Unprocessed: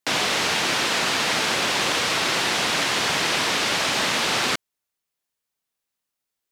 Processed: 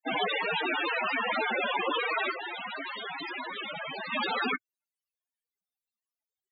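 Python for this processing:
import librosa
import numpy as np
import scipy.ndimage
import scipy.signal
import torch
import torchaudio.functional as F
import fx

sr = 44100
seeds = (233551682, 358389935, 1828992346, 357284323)

y = fx.tube_stage(x, sr, drive_db=28.0, bias=0.3, at=(2.31, 4.12))
y = fx.spec_topn(y, sr, count=8)
y = y * 10.0 ** (4.0 / 20.0)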